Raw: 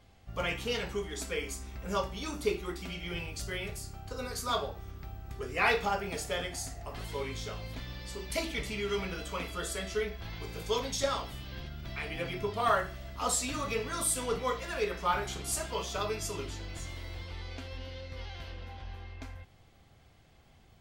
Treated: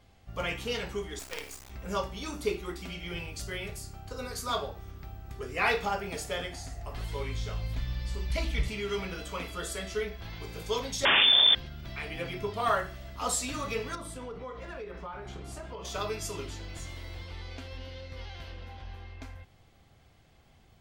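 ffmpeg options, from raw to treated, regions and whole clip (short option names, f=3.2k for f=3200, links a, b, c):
-filter_complex "[0:a]asettb=1/sr,asplit=3[a][b][c];[a]atrim=end=1.194[d];[b]atrim=start=1.19:end=1.7,asetpts=PTS-STARTPTS,afade=t=in:d=0.004:c=qsin,afade=t=out:st=0.506:d=0.004:c=qsin,bandreject=f=50:t=h:w=6,bandreject=f=100:t=h:w=6,bandreject=f=150:t=h:w=6,bandreject=f=200:t=h:w=6,bandreject=f=250:t=h:w=6,bandreject=f=300:t=h:w=6,bandreject=f=350:t=h:w=6,bandreject=f=400:t=h:w=6,bandreject=f=450:t=h:w=6,acrusher=bits=5:dc=4:mix=0:aa=0.000001,lowshelf=f=250:g=-6.5[e];[c]atrim=start=1.696[f];[d][e]acrossfade=d=0.004:c1=hsin:c2=qsin[g];[g][f]acrossfade=d=0.004:c1=qsin:c2=hsin,asettb=1/sr,asplit=3[h][i][j];[h]atrim=end=6.464[k];[i]atrim=start=6.46:end=8.68,asetpts=PTS-STARTPTS,afade=t=in:d=0.004:c=qsin,afade=t=out:st=2.216:d=0.004:c=qsin,asubboost=boost=7.5:cutoff=140,acrossover=split=5200[l][m];[m]acompressor=threshold=-51dB:ratio=4:attack=1:release=60[n];[l][n]amix=inputs=2:normalize=0[o];[j]atrim=start=8.676[p];[k][o]acrossfade=d=0.004:c1=hsin:c2=qsin[q];[q][p]acrossfade=d=0.004:c1=qsin:c2=hsin,asettb=1/sr,asplit=3[r][s][t];[r]atrim=end=11.054[u];[s]atrim=start=11.05:end=11.55,asetpts=PTS-STARTPTS,afade=t=in:d=0.004:c=qsin,afade=t=out:st=0.496:d=0.004:c=qsin,lowshelf=f=190:g=11.5,aeval=exprs='0.133*sin(PI/2*6.31*val(0)/0.133)':c=same,lowpass=f=3.1k:t=q:w=0.5098,lowpass=f=3.1k:t=q:w=0.6013,lowpass=f=3.1k:t=q:w=0.9,lowpass=f=3.1k:t=q:w=2.563,afreqshift=-3600[v];[t]atrim=start=11.546[w];[u][v]acrossfade=d=0.004:c1=hsin:c2=qsin[x];[x][w]acrossfade=d=0.004:c1=qsin:c2=hsin,asettb=1/sr,asplit=3[y][z][aa];[y]atrim=end=13.954[ab];[z]atrim=start=13.95:end=15.85,asetpts=PTS-STARTPTS,afade=t=in:d=0.004:c=qsin,afade=t=out:st=1.896:d=0.004:c=qsin,lowpass=f=1.2k:p=1,acompressor=threshold=-36dB:ratio=12:attack=3.2:release=140:knee=1:detection=peak[ac];[aa]atrim=start=15.846[ad];[ab][ac]acrossfade=d=0.004:c1=hsin:c2=qsin[ae];[ae][ad]acrossfade=d=0.004:c1=qsin:c2=hsin"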